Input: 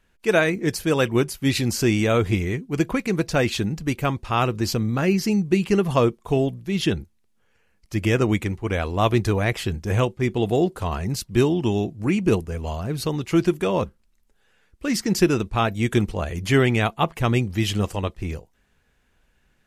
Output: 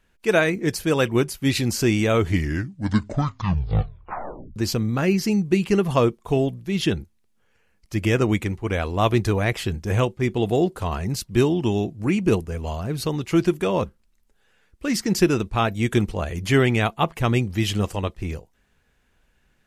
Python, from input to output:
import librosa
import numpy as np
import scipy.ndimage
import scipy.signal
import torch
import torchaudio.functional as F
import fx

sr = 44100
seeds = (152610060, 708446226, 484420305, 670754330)

y = fx.edit(x, sr, fx.tape_stop(start_s=2.1, length_s=2.46), tone=tone)